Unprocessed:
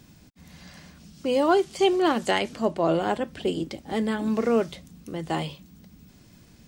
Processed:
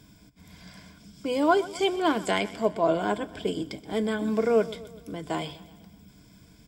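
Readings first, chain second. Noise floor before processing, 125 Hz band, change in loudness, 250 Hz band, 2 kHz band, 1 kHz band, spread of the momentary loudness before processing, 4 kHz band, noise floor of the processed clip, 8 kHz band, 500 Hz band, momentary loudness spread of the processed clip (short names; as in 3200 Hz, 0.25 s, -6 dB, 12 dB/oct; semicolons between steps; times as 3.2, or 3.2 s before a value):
-54 dBFS, -3.5 dB, -1.5 dB, -2.5 dB, -0.5 dB, -1.5 dB, 13 LU, -2.0 dB, -55 dBFS, -1.0 dB, -1.5 dB, 12 LU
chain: ripple EQ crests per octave 1.7, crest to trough 10 dB; feedback echo 0.126 s, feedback 56%, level -18 dB; gain -2.5 dB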